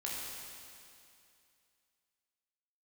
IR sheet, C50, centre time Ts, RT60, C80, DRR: −2.0 dB, 147 ms, 2.5 s, 0.0 dB, −5.0 dB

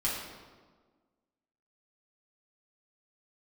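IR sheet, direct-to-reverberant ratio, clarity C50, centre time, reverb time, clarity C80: −7.0 dB, 1.0 dB, 70 ms, 1.5 s, 3.5 dB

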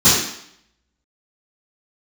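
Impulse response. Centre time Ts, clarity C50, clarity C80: 60 ms, 1.0 dB, 4.5 dB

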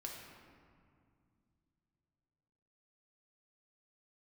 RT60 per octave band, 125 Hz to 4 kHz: 4.0, 3.4, 2.3, 2.2, 1.8, 1.2 seconds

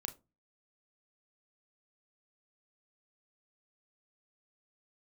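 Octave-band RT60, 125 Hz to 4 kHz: 0.50, 0.40, 0.30, 0.25, 0.20, 0.15 seconds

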